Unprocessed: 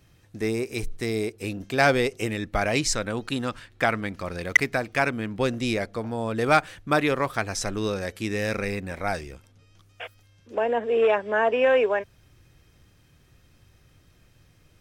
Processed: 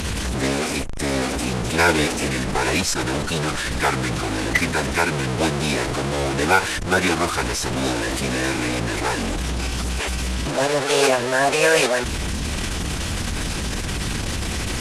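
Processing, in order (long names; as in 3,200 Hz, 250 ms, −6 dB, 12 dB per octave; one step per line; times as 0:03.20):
linear delta modulator 64 kbit/s, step −21 dBFS
harmonic generator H 5 −28 dB, 8 −34 dB, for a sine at −7 dBFS
phase-vocoder pitch shift with formants kept −8.5 semitones
level +2.5 dB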